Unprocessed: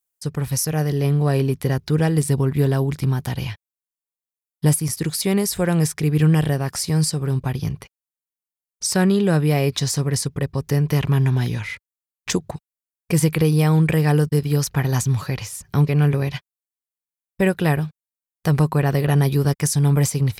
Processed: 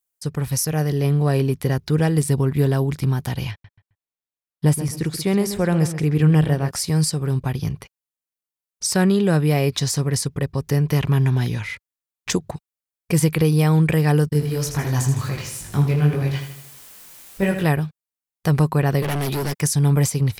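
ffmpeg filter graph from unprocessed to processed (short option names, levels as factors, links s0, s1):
-filter_complex "[0:a]asettb=1/sr,asplit=3[s0][s1][s2];[s0]atrim=end=3.514[s3];[s1]atrim=start=3.51:end=6.71,asetpts=PTS-STARTPTS,afade=t=in:d=0.004:c=qsin,afade=t=out:st=3.196:d=0.004:c=qsin,highshelf=f=4200:g=-7,asplit=2[s4][s5];[s5]adelay=132,lowpass=f=3200:p=1,volume=0.299,asplit=2[s6][s7];[s7]adelay=132,lowpass=f=3200:p=1,volume=0.29,asplit=2[s8][s9];[s9]adelay=132,lowpass=f=3200:p=1,volume=0.29[s10];[s4][s6][s8][s10]amix=inputs=4:normalize=0,atrim=end_sample=141120[s11];[s2]atrim=start=6.706[s12];[s3][s11]acrossfade=d=0.004:c1=hsin:c2=qsin[s13];[s13][s12]acrossfade=d=0.004:c1=qsin:c2=hsin,asettb=1/sr,asplit=3[s14][s15][s16];[s14]atrim=end=14.334[s17];[s15]atrim=start=14.33:end=17.64,asetpts=PTS-STARTPTS,afade=t=in:d=0.004:c=qsin,afade=t=out:st=3.306:d=0.004:c=qsin,aeval=exprs='val(0)+0.5*0.0237*sgn(val(0))':c=same,flanger=delay=19.5:depth=3.5:speed=2.2,aecho=1:1:79|158|237|316|395|474:0.398|0.203|0.104|0.0528|0.0269|0.0137,atrim=end_sample=145971[s18];[s16]atrim=start=17.636[s19];[s17][s18]acrossfade=d=0.004:c1=hsin:c2=qsin[s20];[s20][s19]acrossfade=d=0.004:c1=qsin:c2=hsin,asettb=1/sr,asplit=3[s21][s22][s23];[s21]atrim=end=19.024[s24];[s22]atrim=start=19.02:end=19.61,asetpts=PTS-STARTPTS,afade=t=in:d=0.004:c=qsin,afade=t=out:st=0.586:d=0.004:c=qsin,highpass=200,acontrast=64,volume=11.2,asoftclip=hard,volume=0.0891[s25];[s23]atrim=start=19.606[s26];[s24][s25]acrossfade=d=0.004:c1=hsin:c2=qsin[s27];[s27][s26]acrossfade=d=0.004:c1=qsin:c2=hsin"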